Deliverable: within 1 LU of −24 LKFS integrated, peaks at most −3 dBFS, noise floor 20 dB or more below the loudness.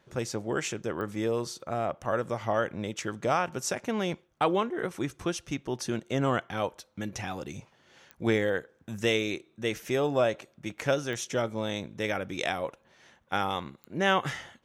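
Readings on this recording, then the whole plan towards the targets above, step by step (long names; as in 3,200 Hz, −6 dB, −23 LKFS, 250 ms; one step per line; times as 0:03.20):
number of clicks 4; integrated loudness −31.0 LKFS; sample peak −12.0 dBFS; target loudness −24.0 LKFS
→ click removal
level +7 dB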